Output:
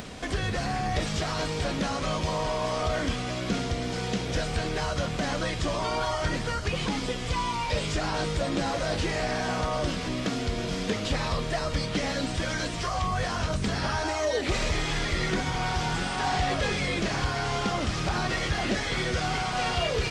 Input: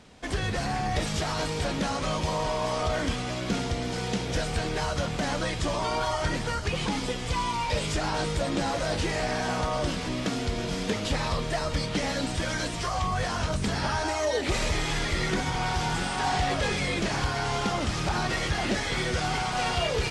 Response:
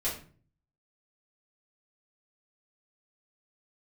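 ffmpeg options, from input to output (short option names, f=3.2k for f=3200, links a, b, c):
-filter_complex "[0:a]acrossover=split=8100[a][b];[b]acompressor=threshold=-55dB:ratio=4:attack=1:release=60[c];[a][c]amix=inputs=2:normalize=0,bandreject=f=880:w=13,acompressor=mode=upward:threshold=-29dB:ratio=2.5"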